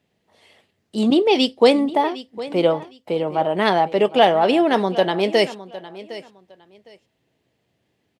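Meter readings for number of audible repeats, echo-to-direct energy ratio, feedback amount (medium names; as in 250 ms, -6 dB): 2, -16.5 dB, 21%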